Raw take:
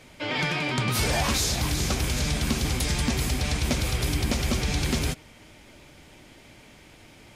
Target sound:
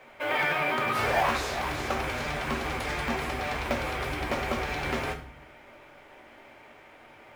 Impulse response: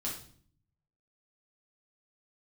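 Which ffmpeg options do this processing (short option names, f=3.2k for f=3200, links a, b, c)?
-filter_complex "[0:a]acrossover=split=440 2300:gain=0.0794 1 0.0891[a][b][c];[a][b][c]amix=inputs=3:normalize=0,acrusher=bits=6:mode=log:mix=0:aa=0.000001,asplit=2[d][e];[1:a]atrim=start_sample=2205,lowshelf=f=170:g=5.5[f];[e][f]afir=irnorm=-1:irlink=0,volume=-2.5dB[g];[d][g]amix=inputs=2:normalize=0,volume=1dB"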